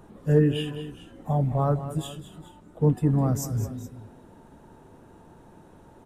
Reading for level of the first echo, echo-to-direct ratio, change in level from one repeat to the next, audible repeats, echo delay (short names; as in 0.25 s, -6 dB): -12.5 dB, -11.5 dB, -5.0 dB, 2, 0.208 s